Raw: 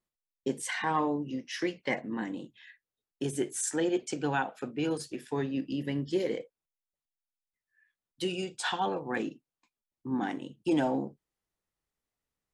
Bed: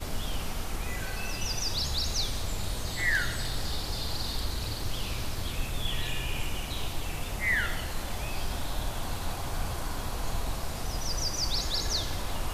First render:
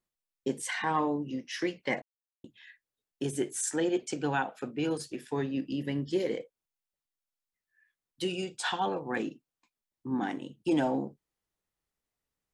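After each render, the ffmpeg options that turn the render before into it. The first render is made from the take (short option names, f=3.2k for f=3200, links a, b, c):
-filter_complex "[0:a]asplit=3[a][b][c];[a]atrim=end=2.02,asetpts=PTS-STARTPTS,afade=t=out:st=2.016:d=0.004:c=hsin[d];[b]atrim=start=2.02:end=2.44,asetpts=PTS-STARTPTS,volume=0[e];[c]atrim=start=2.44,asetpts=PTS-STARTPTS,afade=t=in:d=0.004:c=hsin[f];[d][e][f]concat=n=3:v=0:a=1"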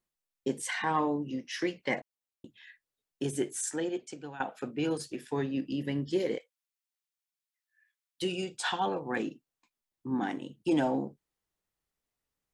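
-filter_complex "[0:a]asettb=1/sr,asplit=3[a][b][c];[a]atrim=end=6.384[d];[b]atrim=start=6.38:end=8.22,asetpts=PTS-STARTPTS,afade=t=in:d=0.004:c=qsin,afade=t=out:st=1.836:d=0.004:c=qsin,highpass=1.4k[e];[c]atrim=start=8.216[f];[d][e]acrossfade=d=0.004:c1=hsin:c2=qsin[g];[g][f]acrossfade=d=0.004:c1=qsin:c2=hsin,asplit=2[h][i];[h]atrim=end=4.4,asetpts=PTS-STARTPTS,afade=t=out:st=3.41:d=0.99:silence=0.133352[j];[i]atrim=start=4.4,asetpts=PTS-STARTPTS,afade=t=in:d=0.004:c=hsin:silence=0.133352[k];[j][k]concat=n=2:v=0:a=1"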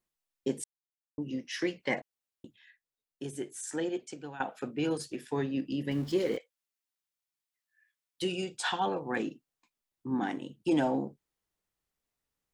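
-filter_complex "[0:a]asettb=1/sr,asplit=3[a][b][c];[a]atrim=end=5.914[d];[b]atrim=start=5.91:end=6.37,asetpts=PTS-STARTPTS,afade=t=in:d=0.004:c=qsin,afade=t=out:st=0.456:d=0.004:c=qsin,aeval=exprs='val(0)+0.5*0.00668*sgn(val(0))':c=same[e];[c]atrim=start=6.366[f];[d][e]acrossfade=d=0.004:c1=hsin:c2=qsin[g];[g][f]acrossfade=d=0.004:c1=qsin:c2=hsin,asplit=5[h][i][j][k][l];[h]atrim=end=0.64,asetpts=PTS-STARTPTS,afade=t=out:st=0.636:d=0.004:c=hsin[m];[i]atrim=start=0.64:end=1.18,asetpts=PTS-STARTPTS,volume=0[n];[j]atrim=start=1.18:end=2.562,asetpts=PTS-STARTPTS,afade=t=in:d=0.004:c=hsin[o];[k]atrim=start=2.558:end=3.692,asetpts=PTS-STARTPTS,volume=-6.5dB[p];[l]atrim=start=3.688[q];[m][n][o]concat=n=3:v=0:a=1[r];[r][p]acrossfade=d=0.004:c1=hsin:c2=hsin[s];[s][q]acrossfade=d=0.004:c1=hsin:c2=hsin"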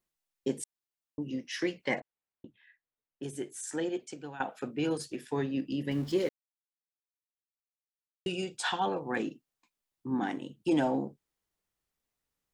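-filter_complex "[0:a]asettb=1/sr,asplit=3[a][b][c];[a]atrim=end=2.004[d];[b]atrim=start=2:end=3.23,asetpts=PTS-STARTPTS,afade=t=in:d=0.004:c=qsin,afade=t=out:st=1.226:d=0.004:c=qsin,lowpass=2.3k[e];[c]atrim=start=3.226[f];[d][e]acrossfade=d=0.004:c1=hsin:c2=qsin[g];[g][f]acrossfade=d=0.004:c1=qsin:c2=hsin,asplit=3[h][i][j];[h]atrim=end=6.29,asetpts=PTS-STARTPTS,afade=t=out:st=6.286:d=0.004:c=hsin[k];[i]atrim=start=6.29:end=8.26,asetpts=PTS-STARTPTS,volume=0[l];[j]atrim=start=8.26,asetpts=PTS-STARTPTS,afade=t=in:d=0.004:c=hsin[m];[k][l][m]concat=n=3:v=0:a=1"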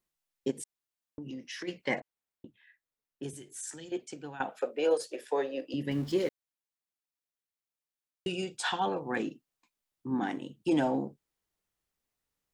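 -filter_complex "[0:a]asplit=3[a][b][c];[a]afade=t=out:st=0.5:d=0.02[d];[b]acompressor=threshold=-37dB:ratio=6:attack=3.2:release=140:knee=1:detection=peak,afade=t=in:st=0.5:d=0.02,afade=t=out:st=1.67:d=0.02[e];[c]afade=t=in:st=1.67:d=0.02[f];[d][e][f]amix=inputs=3:normalize=0,asettb=1/sr,asplit=3[g][h][i];[g]atrim=end=3.334[j];[h]atrim=start=3.33:end=3.92,asetpts=PTS-STARTPTS,afade=t=in:d=0.004:c=qsin,afade=t=out:st=0.586:d=0.004:c=qsin,acrossover=split=150|3000[k][l][m];[l]acompressor=threshold=-50dB:ratio=4:attack=3.2:release=140:knee=2.83:detection=peak[n];[k][n][m]amix=inputs=3:normalize=0[o];[i]atrim=start=3.916[p];[j][o]acrossfade=d=0.004:c1=hsin:c2=qsin[q];[q][p]acrossfade=d=0.004:c1=qsin:c2=hsin,asettb=1/sr,asplit=3[r][s][t];[r]atrim=end=4.614[u];[s]atrim=start=4.61:end=5.74,asetpts=PTS-STARTPTS,afade=t=in:d=0.004:c=qsin,afade=t=out:st=1.126:d=0.004:c=qsin,highpass=f=540:t=q:w=4.8[v];[t]atrim=start=5.736[w];[u][v]acrossfade=d=0.004:c1=hsin:c2=qsin[x];[x][w]acrossfade=d=0.004:c1=qsin:c2=hsin"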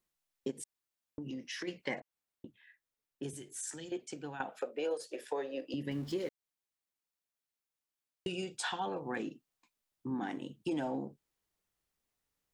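-af "acompressor=threshold=-36dB:ratio=2.5"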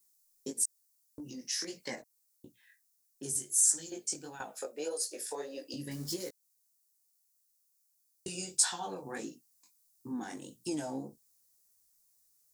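-af "flanger=delay=16.5:depth=6.2:speed=1.6,aexciter=amount=6.9:drive=7.1:freq=4.5k"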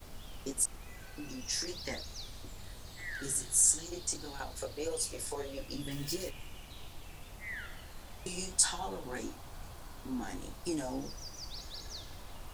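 -filter_complex "[1:a]volume=-15dB[a];[0:a][a]amix=inputs=2:normalize=0"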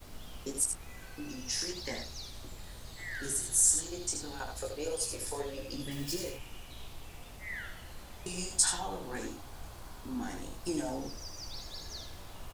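-filter_complex "[0:a]asplit=2[a][b];[b]adelay=17,volume=-11.5dB[c];[a][c]amix=inputs=2:normalize=0,aecho=1:1:78:0.473"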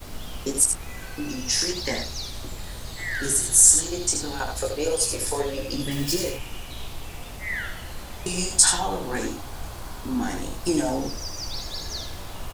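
-af "volume=11dB,alimiter=limit=-1dB:level=0:latency=1"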